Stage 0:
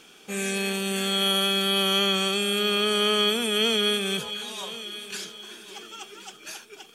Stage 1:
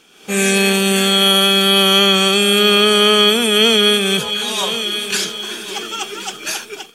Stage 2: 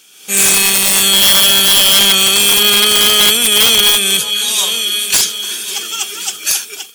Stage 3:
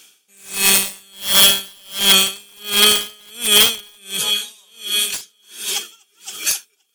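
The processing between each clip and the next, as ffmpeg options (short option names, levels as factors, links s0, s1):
-af "dynaudnorm=f=100:g=5:m=6.31"
-af "crystalizer=i=8:c=0,aeval=exprs='(mod(0.501*val(0)+1,2)-1)/0.501':c=same,volume=0.422"
-af "aeval=exprs='val(0)*pow(10,-37*(0.5-0.5*cos(2*PI*1.4*n/s))/20)':c=same"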